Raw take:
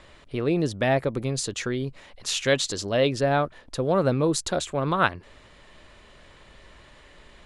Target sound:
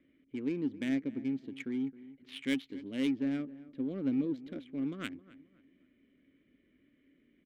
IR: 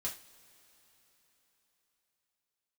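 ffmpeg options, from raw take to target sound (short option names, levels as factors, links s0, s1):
-filter_complex "[0:a]asplit=3[s0][s1][s2];[s0]bandpass=f=270:t=q:w=8,volume=1[s3];[s1]bandpass=f=2290:t=q:w=8,volume=0.501[s4];[s2]bandpass=f=3010:t=q:w=8,volume=0.355[s5];[s3][s4][s5]amix=inputs=3:normalize=0,adynamicsmooth=sensitivity=8:basefreq=1200,asplit=2[s6][s7];[s7]adelay=266,lowpass=f=1400:p=1,volume=0.141,asplit=2[s8][s9];[s9]adelay=266,lowpass=f=1400:p=1,volume=0.36,asplit=2[s10][s11];[s11]adelay=266,lowpass=f=1400:p=1,volume=0.36[s12];[s6][s8][s10][s12]amix=inputs=4:normalize=0,volume=1.19"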